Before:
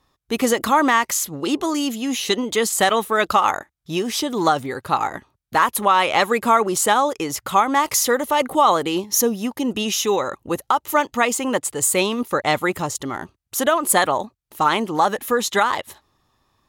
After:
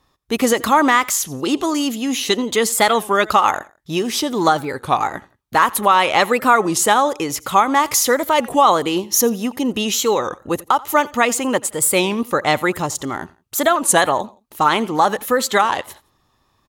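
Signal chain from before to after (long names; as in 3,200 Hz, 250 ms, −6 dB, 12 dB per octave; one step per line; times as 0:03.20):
on a send: repeating echo 85 ms, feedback 33%, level −22 dB
on the sum: wow of a warped record 33 1/3 rpm, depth 160 cents
level +2.5 dB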